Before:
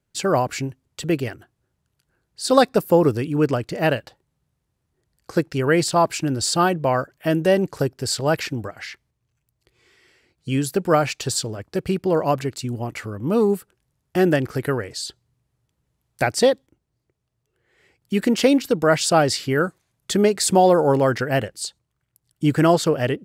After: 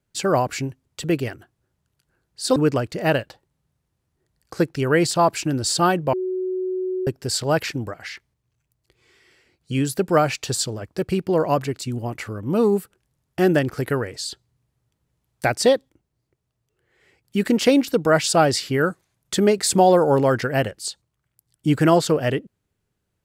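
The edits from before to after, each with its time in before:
0:02.56–0:03.33: remove
0:06.90–0:07.84: beep over 371 Hz −22 dBFS

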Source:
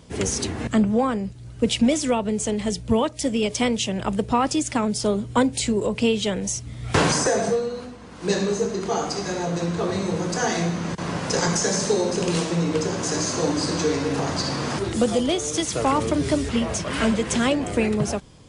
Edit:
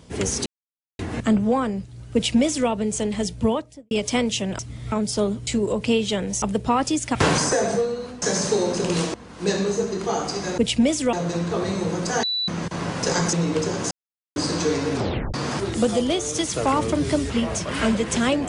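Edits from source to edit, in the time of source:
0:00.46: splice in silence 0.53 s
0:01.61–0:02.16: duplicate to 0:09.40
0:02.86–0:03.38: fade out and dull
0:04.06–0:04.79: swap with 0:06.56–0:06.89
0:05.34–0:05.61: remove
0:10.50–0:10.75: beep over 3,960 Hz −21.5 dBFS
0:11.60–0:12.52: move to 0:07.96
0:13.10–0:13.55: silence
0:14.13: tape stop 0.40 s

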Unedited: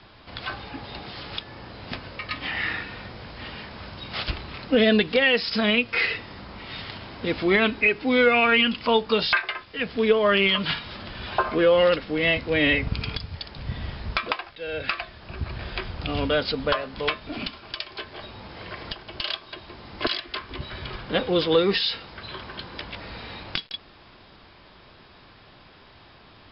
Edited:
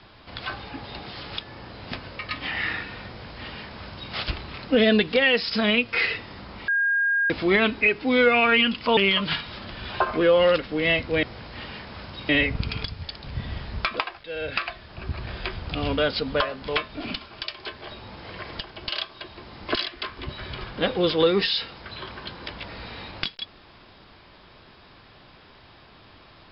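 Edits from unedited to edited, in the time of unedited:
0:03.07–0:04.13: duplicate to 0:12.61
0:06.68–0:07.30: beep over 1,620 Hz −19 dBFS
0:08.97–0:10.35: remove

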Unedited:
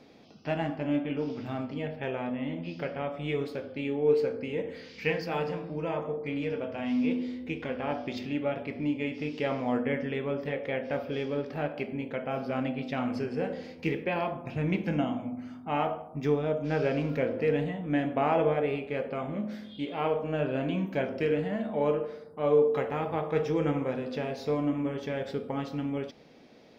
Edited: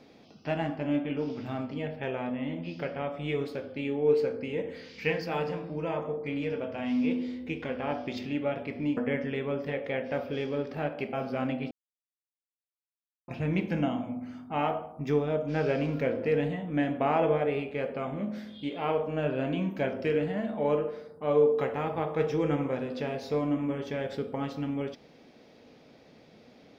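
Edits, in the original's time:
0:08.97–0:09.76: remove
0:11.92–0:12.29: remove
0:12.87–0:14.44: silence

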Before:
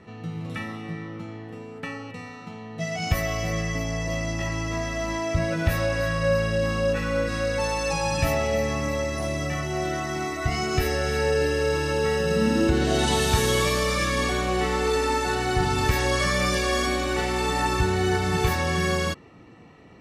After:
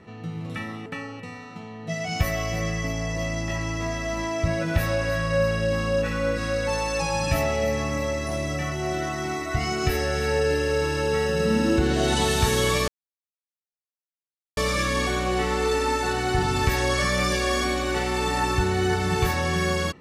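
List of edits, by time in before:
0:00.86–0:01.77: remove
0:13.79: splice in silence 1.69 s

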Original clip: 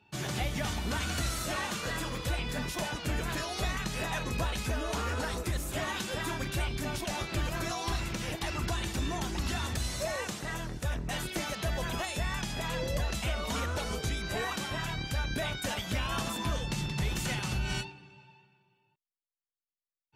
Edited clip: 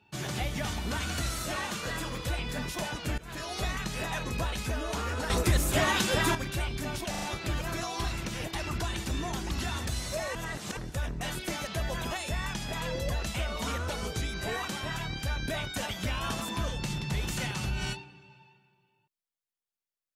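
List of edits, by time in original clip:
0:03.18–0:03.52: fade in, from −22 dB
0:05.30–0:06.35: clip gain +8 dB
0:07.10: stutter 0.04 s, 4 plays
0:10.23–0:10.65: reverse

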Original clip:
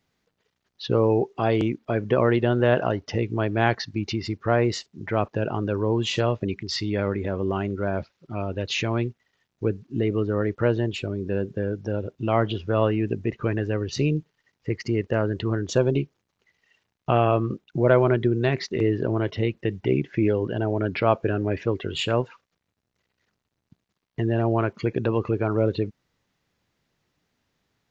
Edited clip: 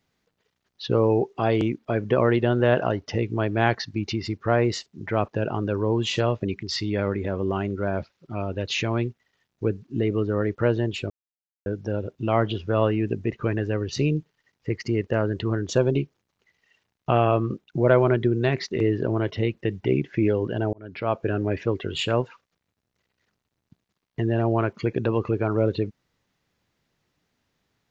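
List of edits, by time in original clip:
0:11.10–0:11.66: silence
0:20.73–0:21.36: fade in

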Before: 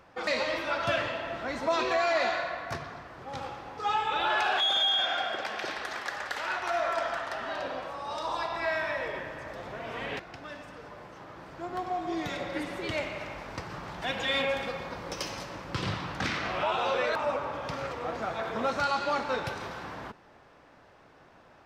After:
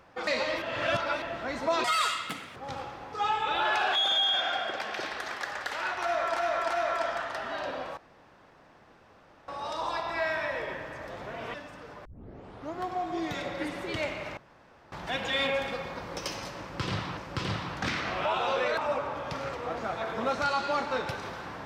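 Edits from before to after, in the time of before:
0:00.62–0:01.22: reverse
0:01.84–0:03.21: play speed 190%
0:06.67–0:07.01: repeat, 3 plays
0:07.94: splice in room tone 1.51 s
0:10.00–0:10.49: remove
0:11.00: tape start 0.71 s
0:13.32–0:13.87: fill with room tone
0:15.55–0:16.12: repeat, 2 plays

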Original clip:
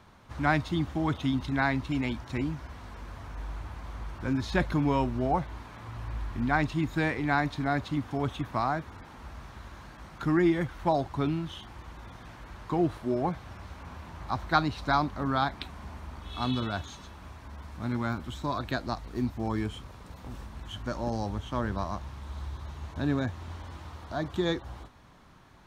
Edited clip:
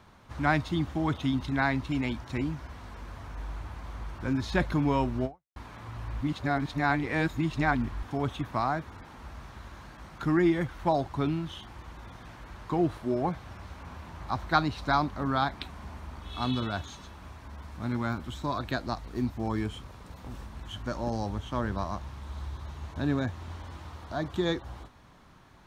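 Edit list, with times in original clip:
0:05.25–0:05.56: fade out exponential
0:06.21–0:08.03: reverse

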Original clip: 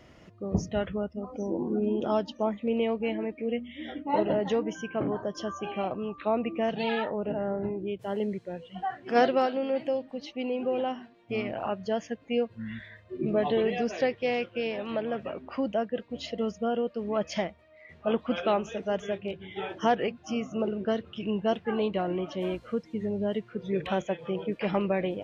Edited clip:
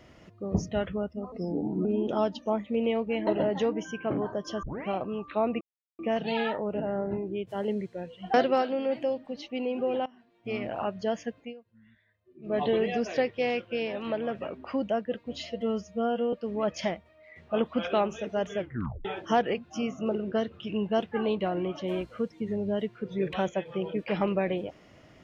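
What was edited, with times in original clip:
0:01.32–0:01.78: play speed 87%
0:03.20–0:04.17: remove
0:05.53: tape start 0.25 s
0:06.51: splice in silence 0.38 s
0:08.86–0:09.18: remove
0:10.90–0:11.51: fade in, from −22 dB
0:12.20–0:13.44: duck −21.5 dB, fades 0.18 s
0:16.24–0:16.86: time-stretch 1.5×
0:19.11: tape stop 0.47 s

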